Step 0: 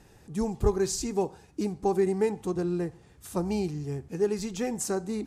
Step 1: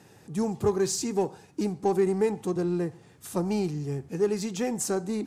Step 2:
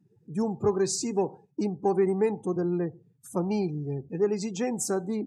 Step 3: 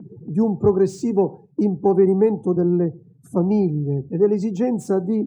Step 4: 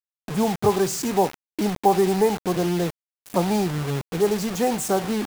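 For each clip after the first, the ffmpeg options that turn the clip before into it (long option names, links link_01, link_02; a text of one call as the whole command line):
ffmpeg -i in.wav -filter_complex "[0:a]highpass=frequency=100:width=0.5412,highpass=frequency=100:width=1.3066,asplit=2[link_01][link_02];[link_02]asoftclip=type=tanh:threshold=-31.5dB,volume=-8dB[link_03];[link_01][link_03]amix=inputs=2:normalize=0" out.wav
ffmpeg -i in.wav -af "highpass=96,afftdn=noise_reduction=31:noise_floor=-43" out.wav
ffmpeg -i in.wav -filter_complex "[0:a]tiltshelf=frequency=1100:gain=8.5,acrossover=split=120|670|2000[link_01][link_02][link_03][link_04];[link_02]acompressor=mode=upward:threshold=-28dB:ratio=2.5[link_05];[link_04]asoftclip=type=tanh:threshold=-39.5dB[link_06];[link_01][link_05][link_03][link_06]amix=inputs=4:normalize=0,volume=2dB" out.wav
ffmpeg -i in.wav -af "crystalizer=i=1.5:c=0,lowshelf=frequency=510:width_type=q:width=1.5:gain=-8.5,acrusher=bits=5:mix=0:aa=0.000001,volume=5dB" out.wav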